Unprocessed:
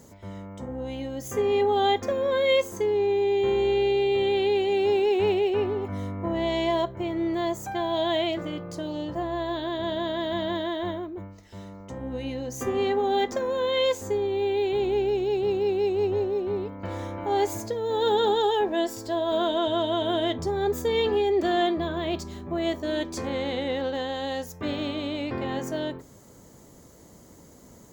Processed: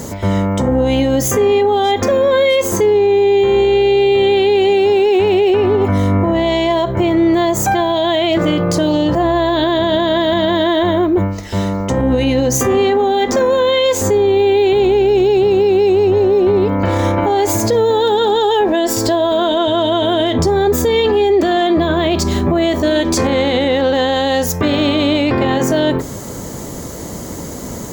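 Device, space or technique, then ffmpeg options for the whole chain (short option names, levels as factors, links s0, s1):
loud club master: -af "acompressor=threshold=0.0224:ratio=1.5,asoftclip=type=hard:threshold=0.106,alimiter=level_in=29.9:limit=0.891:release=50:level=0:latency=1,volume=0.531"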